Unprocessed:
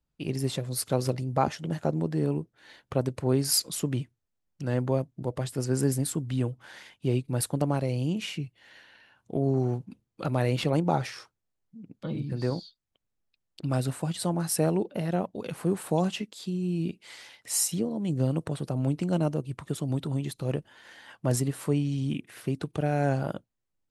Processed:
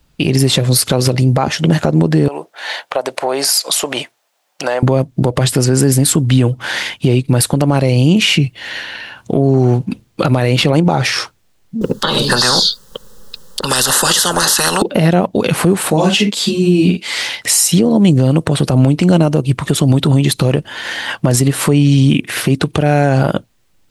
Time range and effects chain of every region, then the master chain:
2.28–4.83 resonant high-pass 690 Hz, resonance Q 2.3 + compressor 4:1, threshold -40 dBFS
11.81–14.82 bell 510 Hz +7.5 dB 0.61 oct + fixed phaser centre 460 Hz, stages 8 + spectral compressor 10:1
15.9–17.17 HPF 61 Hz + doubler 45 ms -6.5 dB + ensemble effect
whole clip: bell 3200 Hz +4 dB 1.9 oct; compressor 3:1, threshold -33 dBFS; maximiser +26.5 dB; gain -1 dB

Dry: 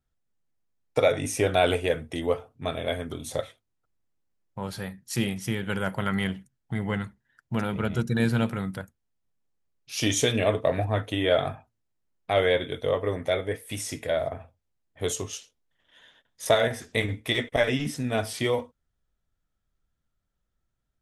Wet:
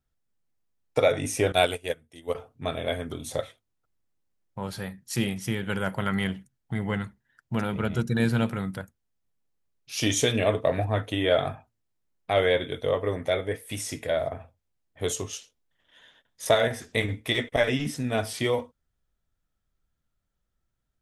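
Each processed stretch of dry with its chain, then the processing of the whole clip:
1.52–2.35 high shelf 3900 Hz +11.5 dB + upward expander 2.5:1, over -32 dBFS
whole clip: dry

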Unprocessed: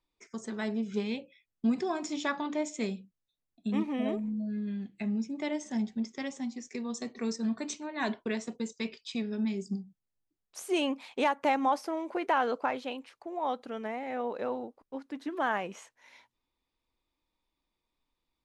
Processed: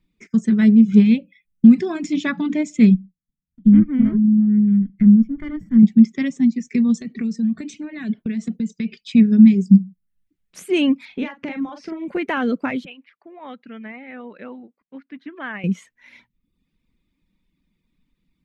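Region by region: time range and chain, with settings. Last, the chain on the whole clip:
2.94–5.83 minimum comb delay 0.38 ms + polynomial smoothing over 41 samples + bell 620 Hz -10 dB 2 oct
6.98–9.02 notch 1000 Hz, Q 6 + compressor 8:1, threshold -39 dBFS
11.05–12.08 LPF 5900 Hz 24 dB/oct + compressor 2.5:1, threshold -39 dBFS + doubler 43 ms -5 dB
12.85–15.64 HPF 1300 Hz 6 dB/oct + air absorption 300 m
whole clip: reverb removal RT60 0.64 s; EQ curve 120 Hz 0 dB, 180 Hz +12 dB, 340 Hz -6 dB, 840 Hz -19 dB, 2100 Hz -5 dB, 4800 Hz -14 dB; maximiser +18 dB; gain -1 dB

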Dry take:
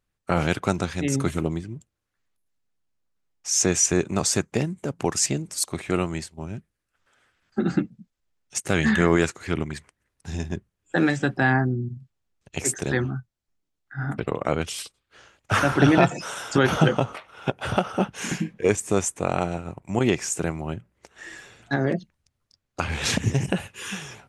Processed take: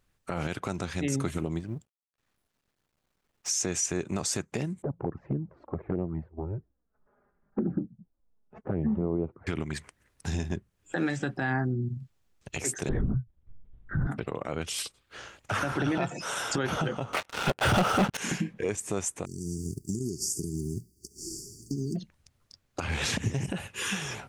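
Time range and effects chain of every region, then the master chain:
1.59–3.5 G.711 law mismatch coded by A + high shelf 4300 Hz -8 dB
4.82–9.47 Bessel low-pass 730 Hz, order 4 + envelope flanger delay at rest 5 ms, full sweep at -19 dBFS
12.89–14.07 tilt -4.5 dB/oct + compressor 1.5:1, threshold -26 dBFS + LPC vocoder at 8 kHz whisper
17.13–18.17 notch 1100 Hz, Q 21 + sample leveller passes 5
19.24–21.95 spectral whitening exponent 0.6 + compressor, threshold -27 dBFS + brick-wall FIR band-stop 430–4500 Hz
whole clip: compressor 2.5:1, threshold -38 dBFS; limiter -25.5 dBFS; gain +7 dB

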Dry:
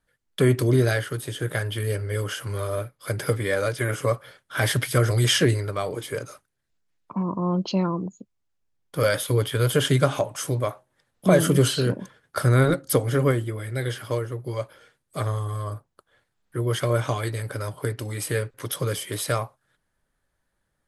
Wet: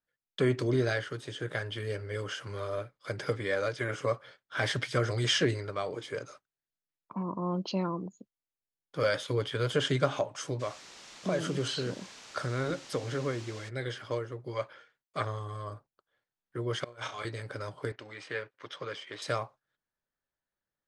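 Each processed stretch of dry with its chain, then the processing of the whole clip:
10.59–13.68 compressor 2:1, threshold -23 dBFS + added noise white -40 dBFS
14.55–15.25 gate with hold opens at -51 dBFS, closes at -58 dBFS + bell 1700 Hz +7 dB 2.1 oct
16.84–17.25 low shelf 380 Hz -11 dB + negative-ratio compressor -35 dBFS, ratio -0.5 + flutter echo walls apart 5.7 m, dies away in 0.28 s
17.92–19.22 G.711 law mismatch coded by A + LPF 2300 Hz + tilt +3.5 dB/oct
whole clip: gate -45 dBFS, range -9 dB; LPF 6700 Hz 24 dB/oct; low shelf 130 Hz -10 dB; gain -5.5 dB

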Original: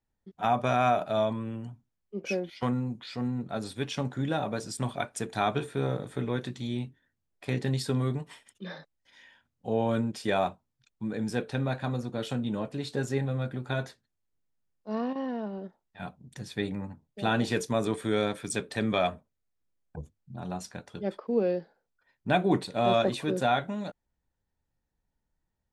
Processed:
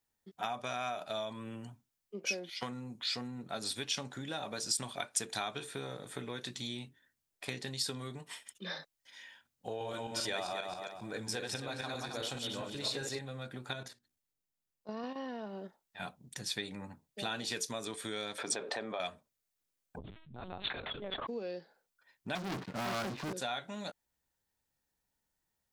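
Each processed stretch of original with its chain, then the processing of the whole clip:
9.67–13.19 regenerating reverse delay 0.134 s, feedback 47%, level -2 dB + bell 220 Hz -9.5 dB 0.26 oct
13.73–15.04 low shelf 420 Hz +5.5 dB + notches 60/120/180/240/300/360 Hz + level quantiser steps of 11 dB
18.38–19 band-pass 700 Hz, Q 1.5 + fast leveller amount 70%
19.98–21.27 LPC vocoder at 8 kHz pitch kept + sustainer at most 34 dB/s
22.35–23.33 LPF 1300 Hz 24 dB/oct + bell 550 Hz -14.5 dB 1.5 oct + sample leveller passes 5
whole clip: dynamic EQ 4800 Hz, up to +6 dB, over -51 dBFS, Q 0.96; compressor, threshold -34 dBFS; tilt +2.5 dB/oct

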